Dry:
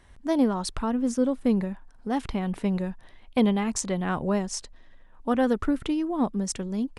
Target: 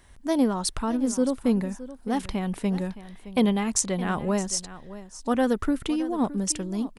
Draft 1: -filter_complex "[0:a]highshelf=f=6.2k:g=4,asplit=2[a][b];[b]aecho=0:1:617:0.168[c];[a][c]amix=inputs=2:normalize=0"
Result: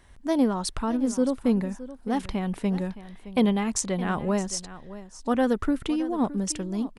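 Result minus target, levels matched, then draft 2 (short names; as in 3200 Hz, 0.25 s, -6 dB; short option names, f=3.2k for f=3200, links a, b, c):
8000 Hz band -3.5 dB
-filter_complex "[0:a]highshelf=f=6.2k:g=10.5,asplit=2[a][b];[b]aecho=0:1:617:0.168[c];[a][c]amix=inputs=2:normalize=0"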